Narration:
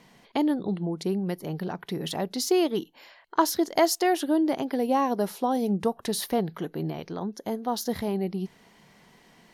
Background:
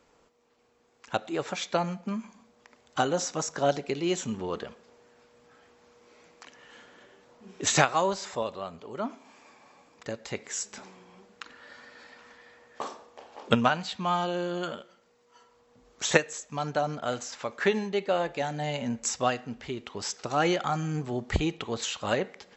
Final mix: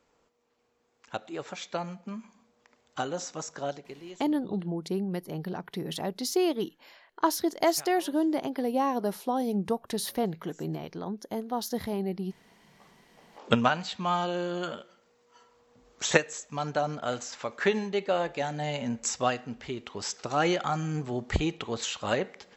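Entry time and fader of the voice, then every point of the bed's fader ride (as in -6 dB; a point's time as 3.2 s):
3.85 s, -3.0 dB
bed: 3.55 s -6 dB
4.51 s -25.5 dB
12.91 s -25.5 dB
13.49 s -0.5 dB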